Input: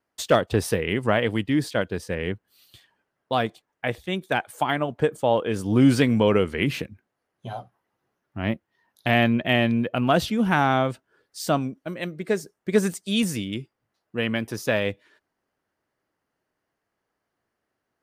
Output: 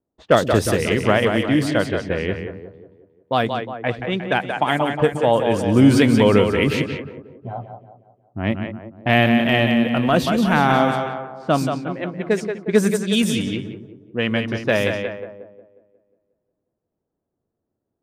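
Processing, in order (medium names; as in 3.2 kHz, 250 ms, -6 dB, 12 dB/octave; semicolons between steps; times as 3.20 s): two-band feedback delay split 310 Hz, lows 124 ms, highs 180 ms, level -6 dB; level-controlled noise filter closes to 440 Hz, open at -18.5 dBFS; 9.38–10.80 s: transient shaper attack -7 dB, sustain -3 dB; trim +4 dB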